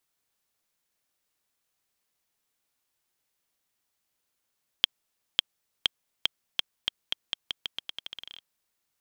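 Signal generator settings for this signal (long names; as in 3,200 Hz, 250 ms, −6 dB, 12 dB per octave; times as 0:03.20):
bouncing ball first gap 0.55 s, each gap 0.85, 3,240 Hz, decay 12 ms −3 dBFS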